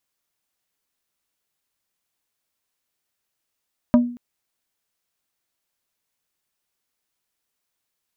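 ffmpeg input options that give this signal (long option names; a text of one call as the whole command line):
ffmpeg -f lavfi -i "aevalsrc='0.398*pow(10,-3*t/0.46)*sin(2*PI*242*t)+0.188*pow(10,-3*t/0.153)*sin(2*PI*605*t)+0.0891*pow(10,-3*t/0.087)*sin(2*PI*968*t)+0.0422*pow(10,-3*t/0.067)*sin(2*PI*1210*t)+0.02*pow(10,-3*t/0.049)*sin(2*PI*1573*t)':duration=0.23:sample_rate=44100" out.wav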